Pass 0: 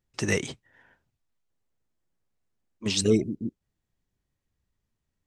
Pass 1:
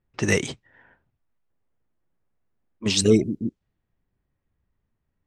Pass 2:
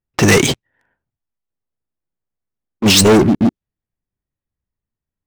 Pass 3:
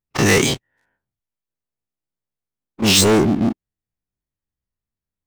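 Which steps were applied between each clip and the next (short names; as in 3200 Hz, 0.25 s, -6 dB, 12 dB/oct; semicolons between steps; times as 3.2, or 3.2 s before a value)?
low-pass opened by the level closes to 2000 Hz, open at -24.5 dBFS; gain +4.5 dB
sample leveller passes 5
spectral dilation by 60 ms; gain -7.5 dB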